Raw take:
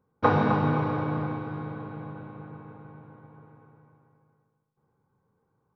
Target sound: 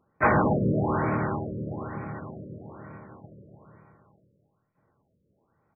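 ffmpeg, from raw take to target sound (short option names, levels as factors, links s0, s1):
-filter_complex "[0:a]crystalizer=i=7.5:c=0,asplit=3[s0][s1][s2];[s1]asetrate=33038,aresample=44100,atempo=1.33484,volume=0.891[s3];[s2]asetrate=55563,aresample=44100,atempo=0.793701,volume=0.891[s4];[s0][s3][s4]amix=inputs=3:normalize=0,aresample=8000,asoftclip=type=tanh:threshold=0.237,aresample=44100,afftfilt=real='re*lt(b*sr/1024,580*pow(2600/580,0.5+0.5*sin(2*PI*1.1*pts/sr)))':imag='im*lt(b*sr/1024,580*pow(2600/580,0.5+0.5*sin(2*PI*1.1*pts/sr)))':win_size=1024:overlap=0.75,volume=0.794"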